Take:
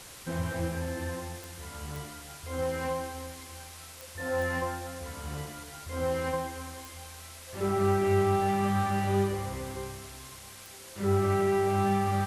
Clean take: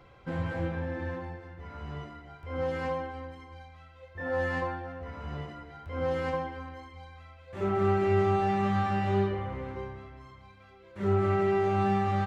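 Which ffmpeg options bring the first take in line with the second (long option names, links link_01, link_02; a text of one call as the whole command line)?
ffmpeg -i in.wav -af "adeclick=threshold=4,afwtdn=0.005" out.wav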